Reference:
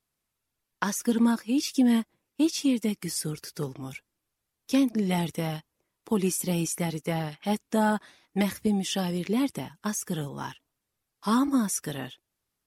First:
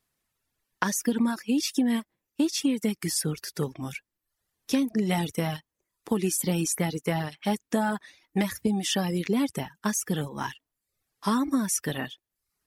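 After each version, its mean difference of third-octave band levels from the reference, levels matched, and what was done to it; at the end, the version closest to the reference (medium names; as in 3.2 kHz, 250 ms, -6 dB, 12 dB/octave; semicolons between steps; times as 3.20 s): 2.5 dB: reverb removal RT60 0.54 s; peaking EQ 1.8 kHz +4.5 dB 0.22 oct; compression, threshold -25 dBFS, peak gain reduction 7.5 dB; trim +4 dB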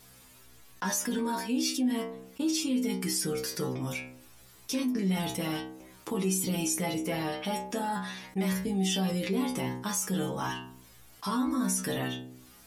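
7.0 dB: peak limiter -21 dBFS, peak gain reduction 11.5 dB; inharmonic resonator 62 Hz, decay 0.5 s, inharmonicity 0.002; level flattener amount 50%; trim +6 dB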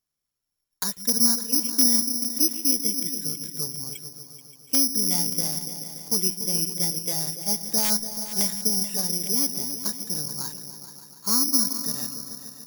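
11.0 dB: integer overflow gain 13.5 dB; delay with an opening low-pass 144 ms, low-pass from 200 Hz, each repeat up 2 oct, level -6 dB; careless resampling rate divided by 8×, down filtered, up zero stuff; trim -7.5 dB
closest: first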